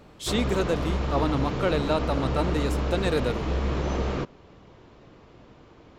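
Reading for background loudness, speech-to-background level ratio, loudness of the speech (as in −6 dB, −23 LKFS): −29.0 LKFS, 0.5 dB, −28.5 LKFS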